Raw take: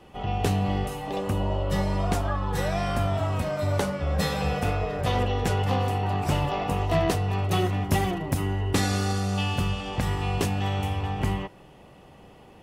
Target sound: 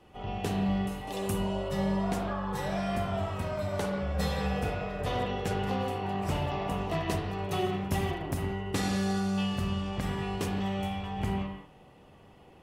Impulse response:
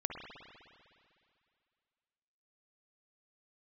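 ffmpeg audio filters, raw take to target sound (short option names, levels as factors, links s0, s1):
-filter_complex "[0:a]asettb=1/sr,asplit=3[s0][s1][s2];[s0]atrim=end=1.074[s3];[s1]atrim=start=1.07:end=1.69,asetpts=PTS-STARTPTS,afade=t=in:d=0.004:c=qsin,afade=t=out:st=0.616:d=0.004:c=qsin,equalizer=f=11000:t=o:w=2:g=15[s4];[s2]atrim=start=1.686[s5];[s3][s4]acrossfade=d=0.004:c1=hsin:c2=qsin[s6];[s6][s5]acrossfade=d=0.004:c1=qsin:c2=hsin[s7];[1:a]atrim=start_sample=2205,afade=t=out:st=0.26:d=0.01,atrim=end_sample=11907,asetrate=48510,aresample=44100[s8];[s7][s8]afir=irnorm=-1:irlink=0,volume=0.562"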